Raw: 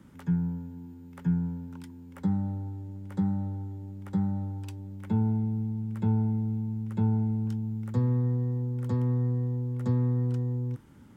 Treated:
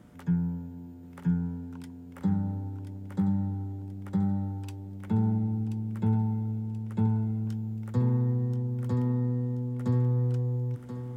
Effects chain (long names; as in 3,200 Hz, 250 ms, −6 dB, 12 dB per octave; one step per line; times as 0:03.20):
hum with harmonics 120 Hz, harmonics 6, −63 dBFS −2 dB per octave
on a send: feedback echo with a high-pass in the loop 1,031 ms, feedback 36%, high-pass 180 Hz, level −8 dB